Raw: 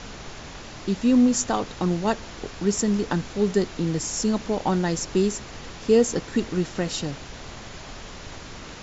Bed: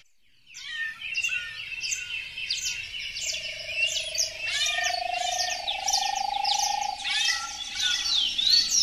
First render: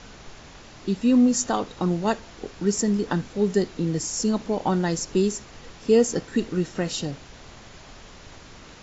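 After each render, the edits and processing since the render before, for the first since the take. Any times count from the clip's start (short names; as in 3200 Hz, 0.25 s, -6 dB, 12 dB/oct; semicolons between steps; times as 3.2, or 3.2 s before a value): noise print and reduce 6 dB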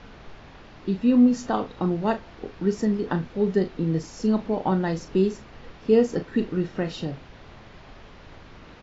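air absorption 230 m; doubler 37 ms -10 dB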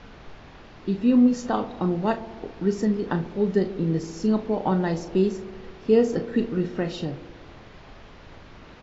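band-limited delay 67 ms, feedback 75%, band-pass 420 Hz, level -13 dB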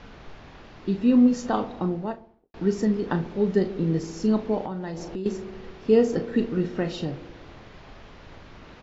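1.58–2.54 studio fade out; 4.65–5.26 compressor, threshold -29 dBFS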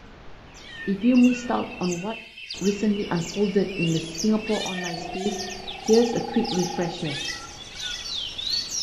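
add bed -6 dB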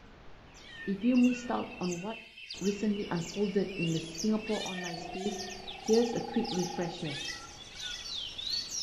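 gain -8 dB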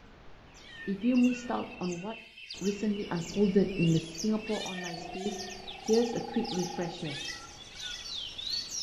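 1.75–2.18 air absorption 52 m; 3.29–3.99 low shelf 400 Hz +8 dB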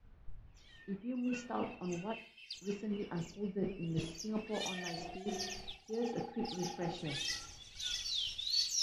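reverse; compressor 12:1, threshold -35 dBFS, peak gain reduction 17 dB; reverse; three-band expander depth 100%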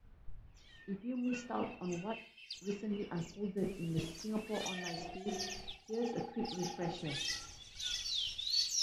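3.57–4.66 delta modulation 64 kbps, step -51 dBFS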